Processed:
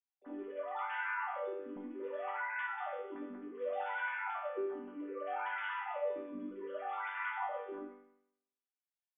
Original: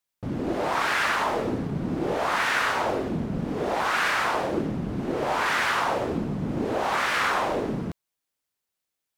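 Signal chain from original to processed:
three sine waves on the formant tracks
resonators tuned to a chord G3 major, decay 0.74 s
level +7 dB

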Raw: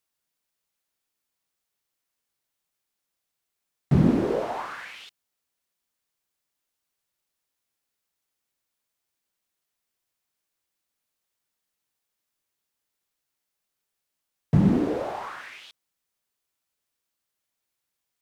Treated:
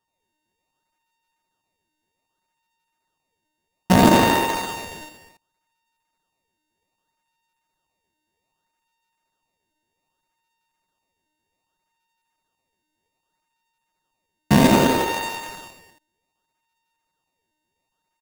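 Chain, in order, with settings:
samples sorted by size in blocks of 64 samples
pitch shifter +5 semitones
loudspeakers that aren't time-aligned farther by 29 metres −4 dB, 69 metres −7 dB, 96 metres −11 dB
in parallel at −3 dB: sample-and-hold swept by an LFO 20×, swing 160% 0.64 Hz

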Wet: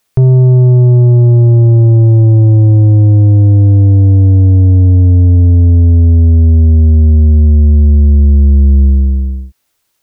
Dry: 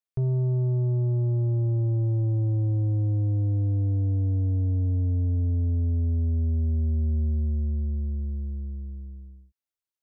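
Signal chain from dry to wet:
boost into a limiter +31.5 dB
level −2.5 dB

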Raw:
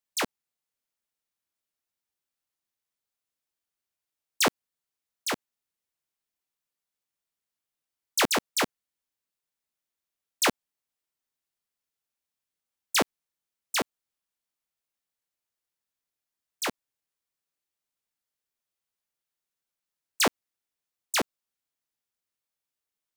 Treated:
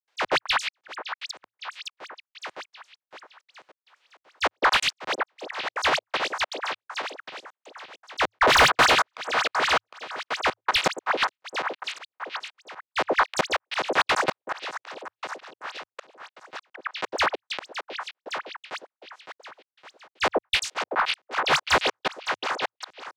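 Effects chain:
feedback delay that plays each chunk backwards 281 ms, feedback 69%, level −7 dB
high-shelf EQ 5,100 Hz −4.5 dB
on a send: echo through a band-pass that steps 105 ms, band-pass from 500 Hz, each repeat 1.4 octaves, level −1.5 dB
on the sum: gate pattern ".xxxx.xxx." 198 BPM −60 dB
three-way crossover with the lows and the highs turned down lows −16 dB, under 530 Hz, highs −18 dB, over 6,800 Hz
frequency shifter −110 Hz
volume swells 478 ms
mid-hump overdrive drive 25 dB, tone 2,600 Hz, clips at −15.5 dBFS
level +7.5 dB

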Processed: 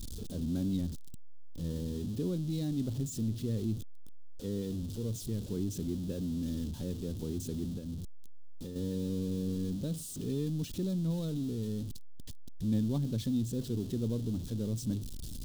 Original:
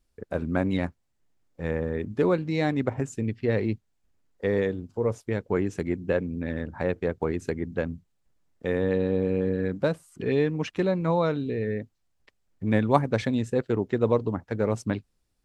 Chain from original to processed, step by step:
converter with a step at zero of −25 dBFS
0:07.69–0:08.76: downward compressor, threshold −26 dBFS, peak gain reduction 7 dB
drawn EQ curve 250 Hz 0 dB, 790 Hz −22 dB, 2,200 Hz −25 dB, 3,400 Hz −5 dB
level −7.5 dB

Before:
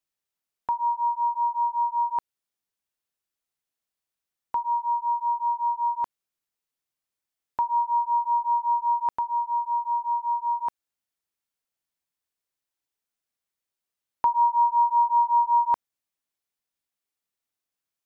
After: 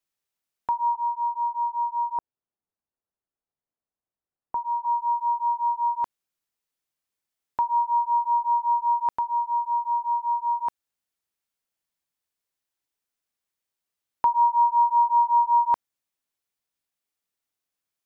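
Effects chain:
0:00.95–0:04.85: low-pass filter 1,000 Hz 12 dB per octave
level +1 dB

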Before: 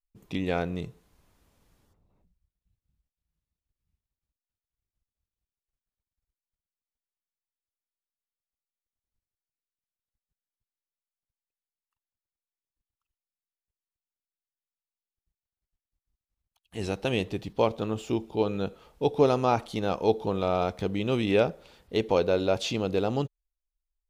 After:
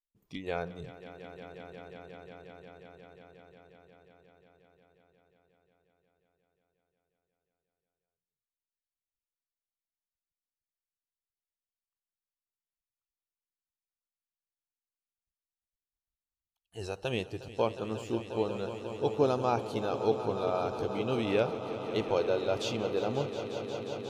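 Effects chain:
noise reduction from a noise print of the clip's start 11 dB
echo that builds up and dies away 179 ms, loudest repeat 5, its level −14 dB
level −5 dB

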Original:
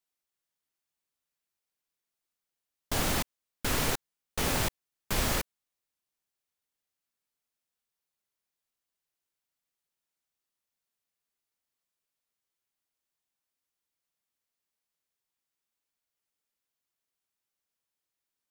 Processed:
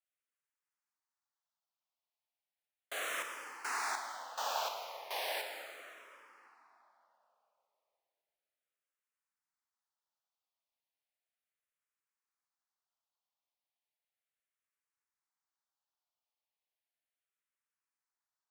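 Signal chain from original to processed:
high-pass filter 690 Hz 24 dB per octave
spectral tilt −3 dB per octave
on a send at −3 dB: convolution reverb RT60 3.3 s, pre-delay 18 ms
on the sum: frequency shifter mixed with the dry sound −0.35 Hz

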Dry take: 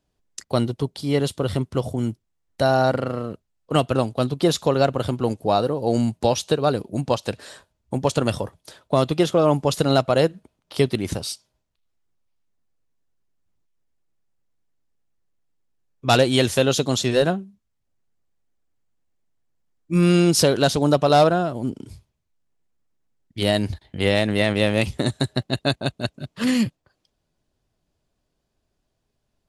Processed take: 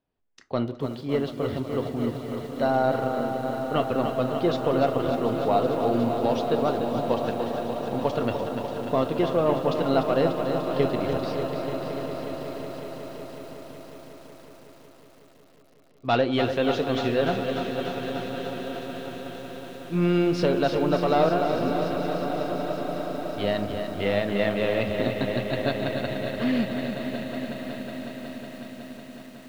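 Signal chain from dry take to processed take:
low-shelf EQ 150 Hz −9.5 dB
in parallel at −4.5 dB: soft clipping −13 dBFS, distortion −14 dB
on the sum: high-frequency loss of the air 290 metres
echo that builds up and dies away 184 ms, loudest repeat 5, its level −15 dB
on a send at −9 dB: convolution reverb RT60 0.50 s, pre-delay 4 ms
on the sum: feedback echo at a low word length 295 ms, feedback 80%, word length 7 bits, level −7.5 dB
level −7 dB

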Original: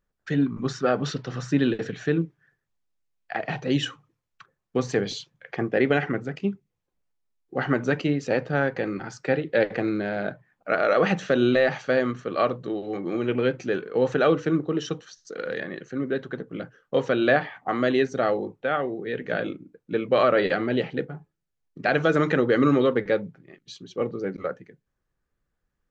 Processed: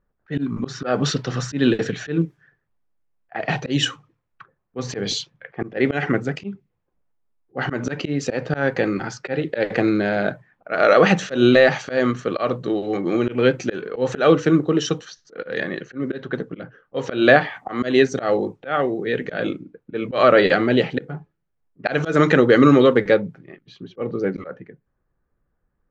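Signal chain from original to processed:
high-shelf EQ 5,300 Hz +6.5 dB, from 0:23.14 −3.5 dB
volume swells 154 ms
low-pass that shuts in the quiet parts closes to 1,400 Hz, open at −26 dBFS
level +7 dB

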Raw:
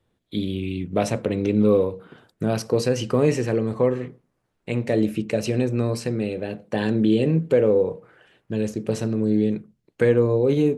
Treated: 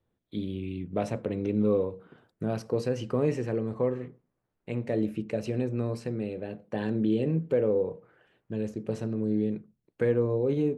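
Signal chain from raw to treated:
high-shelf EQ 2,800 Hz −9.5 dB
level −7 dB

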